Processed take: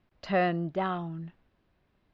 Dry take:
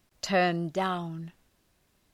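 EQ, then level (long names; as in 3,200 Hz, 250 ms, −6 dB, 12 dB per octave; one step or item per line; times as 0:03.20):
high-frequency loss of the air 330 metres
0.0 dB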